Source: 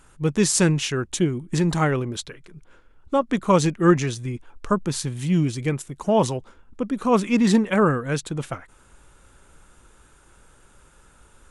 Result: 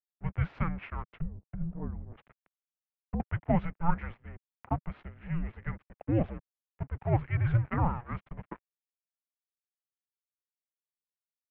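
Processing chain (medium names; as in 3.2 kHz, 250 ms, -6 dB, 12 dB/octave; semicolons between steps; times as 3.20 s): crossover distortion -33 dBFS; 1.02–3.20 s: low-pass that closes with the level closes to 470 Hz, closed at -22.5 dBFS; mistuned SSB -340 Hz 190–2600 Hz; trim -7.5 dB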